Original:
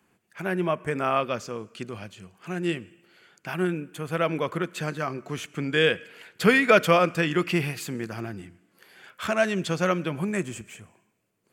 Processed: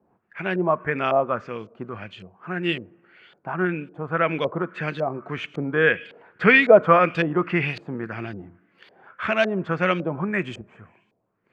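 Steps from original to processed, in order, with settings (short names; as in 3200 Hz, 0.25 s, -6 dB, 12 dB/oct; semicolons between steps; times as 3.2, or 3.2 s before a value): LFO low-pass saw up 1.8 Hz 570–3900 Hz; gain +1 dB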